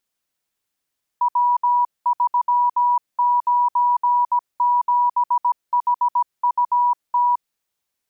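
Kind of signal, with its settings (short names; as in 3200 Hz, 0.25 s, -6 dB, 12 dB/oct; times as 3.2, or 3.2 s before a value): Morse "W397HUT" 17 wpm 973 Hz -14 dBFS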